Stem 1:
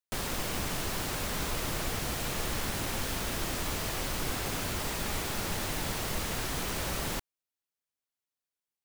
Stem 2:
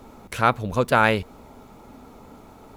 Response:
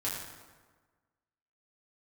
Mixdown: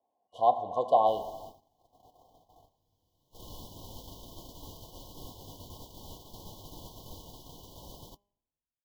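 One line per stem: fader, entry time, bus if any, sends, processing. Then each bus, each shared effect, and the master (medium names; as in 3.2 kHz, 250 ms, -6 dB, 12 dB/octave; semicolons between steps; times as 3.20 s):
-13.0 dB, 0.95 s, send -12 dB, peaking EQ 8.9 kHz -10.5 dB 0.46 oct; auto duck -24 dB, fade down 1.90 s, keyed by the second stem
+2.5 dB, 0.00 s, send -11 dB, level rider gain up to 5.5 dB; vowel filter a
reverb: on, RT60 1.4 s, pre-delay 5 ms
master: gate -44 dBFS, range -25 dB; FFT band-reject 1.1–2.9 kHz; de-hum 202.8 Hz, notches 15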